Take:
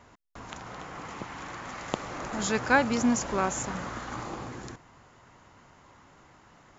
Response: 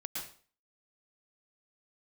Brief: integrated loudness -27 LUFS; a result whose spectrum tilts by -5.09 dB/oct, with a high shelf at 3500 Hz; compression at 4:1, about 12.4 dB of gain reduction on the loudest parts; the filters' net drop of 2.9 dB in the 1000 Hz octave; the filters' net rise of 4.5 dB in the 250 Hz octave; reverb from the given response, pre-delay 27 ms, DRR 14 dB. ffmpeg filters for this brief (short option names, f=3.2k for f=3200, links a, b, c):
-filter_complex "[0:a]equalizer=f=250:t=o:g=5,equalizer=f=1k:t=o:g=-3.5,highshelf=f=3.5k:g=-6,acompressor=threshold=-31dB:ratio=4,asplit=2[a][b];[1:a]atrim=start_sample=2205,adelay=27[c];[b][c]afir=irnorm=-1:irlink=0,volume=-14.5dB[d];[a][d]amix=inputs=2:normalize=0,volume=10dB"